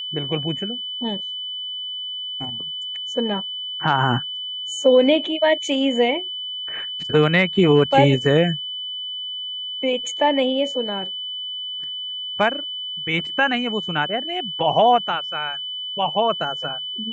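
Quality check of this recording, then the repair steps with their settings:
whine 3 kHz -27 dBFS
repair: band-stop 3 kHz, Q 30

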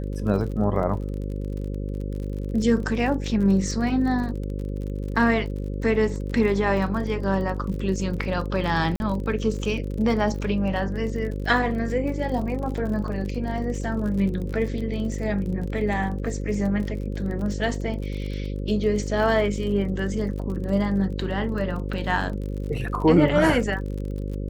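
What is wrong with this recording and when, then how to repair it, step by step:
buzz 50 Hz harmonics 11 -29 dBFS
crackle 40 per s -32 dBFS
8.96–9.00 s: dropout 41 ms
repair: de-click; de-hum 50 Hz, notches 11; interpolate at 8.96 s, 41 ms

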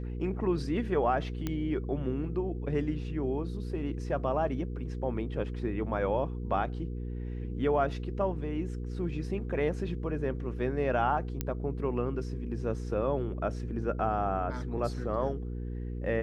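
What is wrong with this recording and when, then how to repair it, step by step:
hum 60 Hz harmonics 8 -36 dBFS
1.47 s: pop -18 dBFS
11.41 s: pop -16 dBFS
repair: de-click; de-hum 60 Hz, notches 8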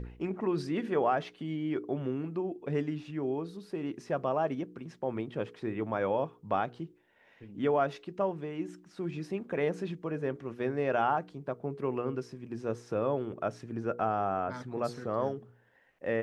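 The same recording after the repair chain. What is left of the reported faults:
1.47 s: pop

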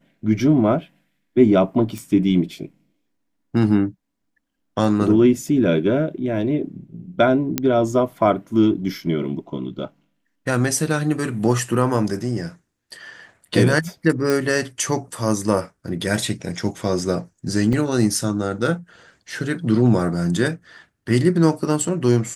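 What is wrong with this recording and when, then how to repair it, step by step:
1.98 s: pop
7.58 s: pop -4 dBFS
14.30 s: pop
17.73 s: dropout 2.4 ms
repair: de-click; interpolate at 17.73 s, 2.4 ms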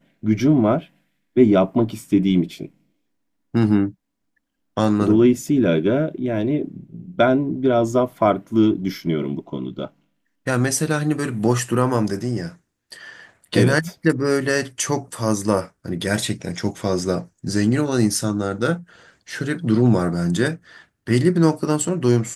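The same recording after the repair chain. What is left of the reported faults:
nothing left

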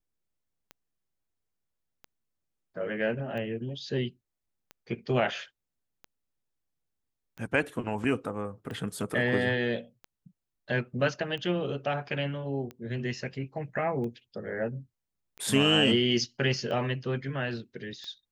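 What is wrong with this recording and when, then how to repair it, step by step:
tick 45 rpm -28 dBFS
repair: de-click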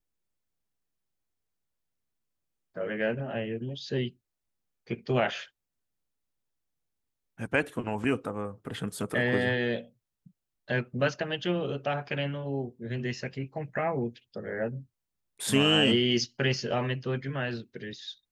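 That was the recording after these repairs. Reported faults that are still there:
nothing left

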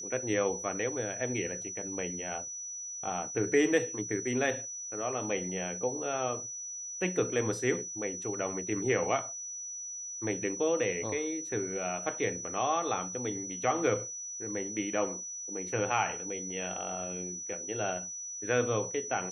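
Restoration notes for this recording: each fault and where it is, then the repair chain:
whine 5.9 kHz -38 dBFS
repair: band-stop 5.9 kHz, Q 30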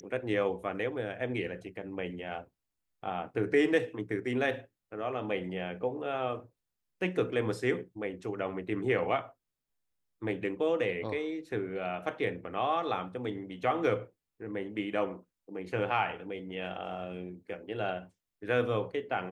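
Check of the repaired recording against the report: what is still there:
nothing left

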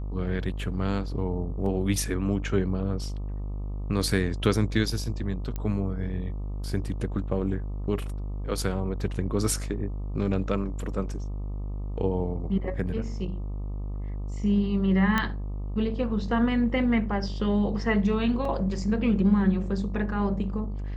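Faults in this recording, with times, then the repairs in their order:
buzz 50 Hz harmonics 25 -32 dBFS
1.66 s: dropout 2.5 ms
5.56 s: pop -19 dBFS
15.18 s: pop -11 dBFS
18.45 s: dropout 2.7 ms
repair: de-click; de-hum 50 Hz, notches 25; interpolate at 1.66 s, 2.5 ms; interpolate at 18.45 s, 2.7 ms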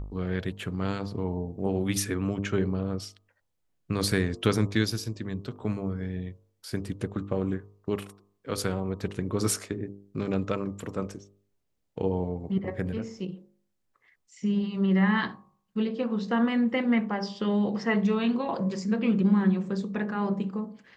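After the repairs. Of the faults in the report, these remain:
nothing left

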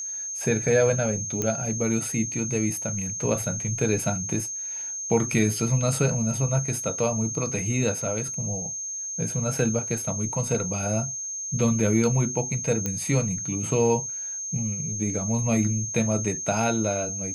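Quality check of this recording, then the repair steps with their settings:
whine 6.4 kHz -30 dBFS
1.42 s: pop -13 dBFS
12.86 s: pop -13 dBFS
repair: de-click; band-stop 6.4 kHz, Q 30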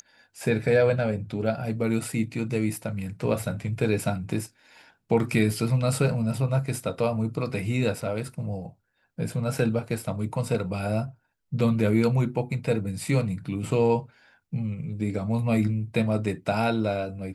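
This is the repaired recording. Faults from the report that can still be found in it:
nothing left

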